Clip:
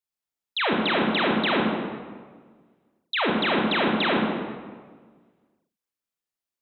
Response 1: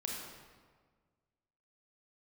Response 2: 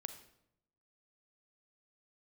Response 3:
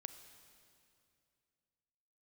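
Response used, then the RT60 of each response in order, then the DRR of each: 1; 1.6, 0.80, 2.5 seconds; −2.0, 8.5, 9.0 decibels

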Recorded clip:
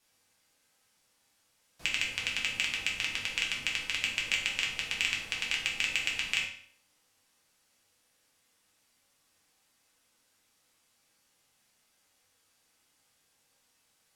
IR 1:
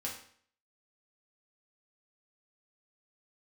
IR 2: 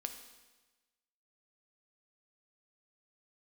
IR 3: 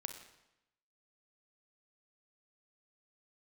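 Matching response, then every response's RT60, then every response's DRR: 1; 0.55, 1.2, 0.90 seconds; −3.5, 6.0, 6.0 decibels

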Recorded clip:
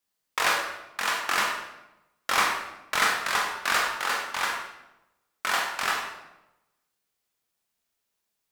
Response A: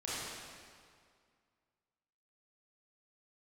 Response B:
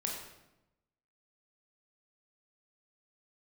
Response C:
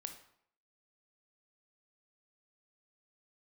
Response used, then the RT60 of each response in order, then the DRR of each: B; 2.1, 0.95, 0.65 seconds; −9.5, −1.0, 6.0 decibels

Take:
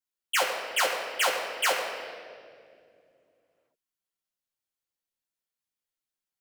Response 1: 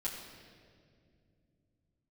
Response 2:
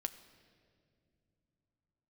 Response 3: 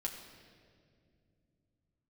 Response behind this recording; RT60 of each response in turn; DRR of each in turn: 1; 2.3, 2.1, 2.3 seconds; −5.5, 9.0, 0.0 decibels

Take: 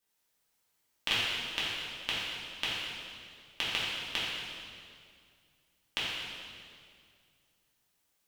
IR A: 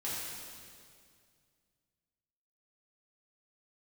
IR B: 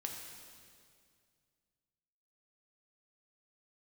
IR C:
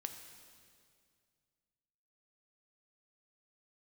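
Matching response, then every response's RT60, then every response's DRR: A; 2.2, 2.2, 2.2 seconds; −9.0, 1.0, 5.5 decibels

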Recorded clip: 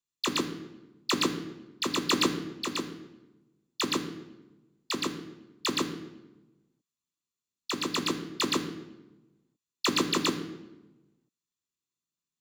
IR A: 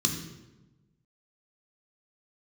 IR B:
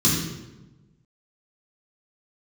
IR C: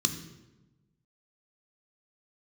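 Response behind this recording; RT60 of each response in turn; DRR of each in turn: C; 1.1, 1.1, 1.1 seconds; 2.5, −7.5, 6.5 decibels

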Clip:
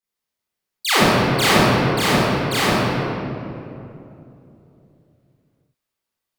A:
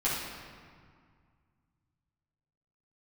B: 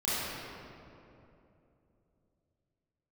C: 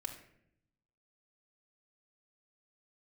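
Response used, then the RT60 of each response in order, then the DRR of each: B; 2.0, 2.9, 0.70 seconds; −9.5, −11.5, 2.5 decibels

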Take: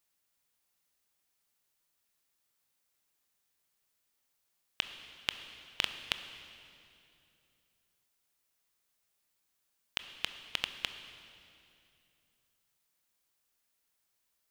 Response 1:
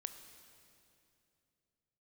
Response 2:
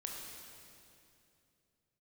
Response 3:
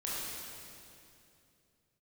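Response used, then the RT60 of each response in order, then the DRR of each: 1; 2.7, 2.7, 2.7 seconds; 8.5, −1.0, −7.5 decibels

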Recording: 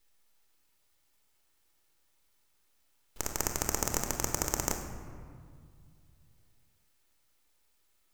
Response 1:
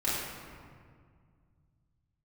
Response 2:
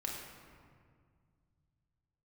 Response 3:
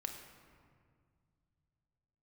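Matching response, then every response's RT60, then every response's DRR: 3; 2.0, 2.0, 2.0 seconds; −11.0, −2.0, 3.5 decibels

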